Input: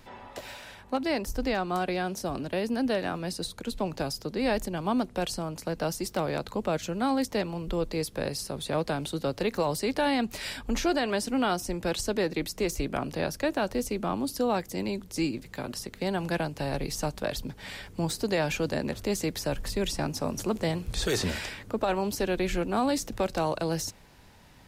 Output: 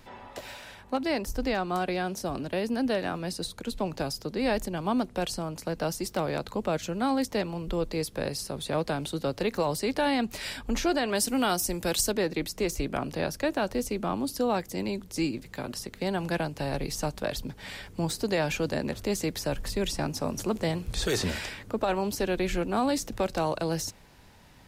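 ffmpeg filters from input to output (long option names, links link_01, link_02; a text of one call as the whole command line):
ffmpeg -i in.wav -filter_complex "[0:a]asettb=1/sr,asplit=3[link_01][link_02][link_03];[link_01]atrim=end=11.154[link_04];[link_02]atrim=start=11.15:end=12.12,asetpts=PTS-STARTPTS,afade=type=in:duration=0.004:curve=qsin,afade=type=out:start_time=0.966:duration=0.004:curve=qsin,aemphasis=mode=production:type=50kf[link_05];[link_03]atrim=start=12.116[link_06];[link_04][link_05]acrossfade=duration=0.004:curve1=hsin:curve2=qsin[link_07];[link_07][link_06]acrossfade=duration=0.004:curve1=qsin:curve2=hsin" out.wav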